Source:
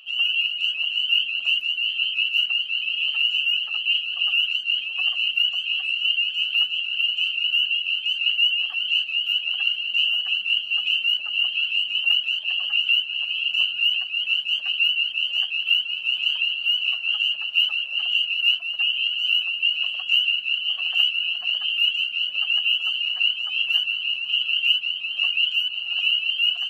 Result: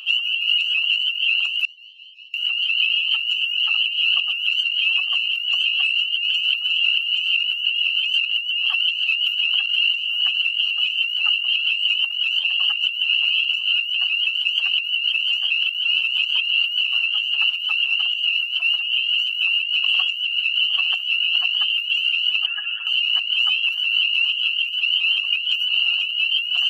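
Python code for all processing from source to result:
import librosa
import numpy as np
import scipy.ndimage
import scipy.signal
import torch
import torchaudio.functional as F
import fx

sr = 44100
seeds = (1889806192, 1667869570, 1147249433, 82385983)

y = fx.chain(x, sr, fx.cheby2_highpass(hz=980.0, order=4, stop_db=80),
    fx.air_absorb(metres=300.0), at=(1.65, 2.34))
y = fx.chain(y, sr, fx.ladder_lowpass(hz=1800.0, resonance_pct=85),
    fx.comb(ms=7.2, depth=0.92),
    fx.env_flatten(amount_pct=50), at=(22.46, 22.87))
y = scipy.signal.sosfilt(scipy.signal.butter(4, 830.0, 'highpass', fs=sr, output='sos'), y)
y = fx.peak_eq(y, sr, hz=1800.0, db=-4.5, octaves=0.66)
y = fx.over_compress(y, sr, threshold_db=-29.0, ratio=-1.0)
y = y * 10.0 ** (7.5 / 20.0)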